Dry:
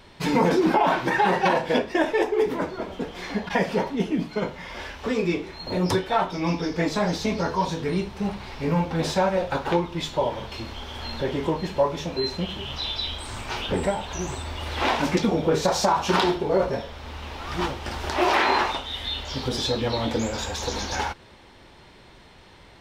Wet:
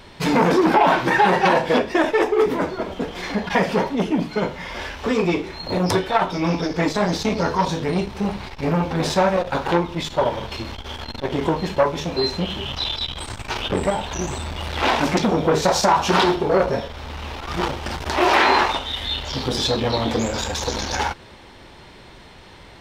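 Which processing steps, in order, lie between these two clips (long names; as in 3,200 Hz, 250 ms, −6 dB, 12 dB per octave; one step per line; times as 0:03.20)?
saturating transformer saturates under 810 Hz
level +6 dB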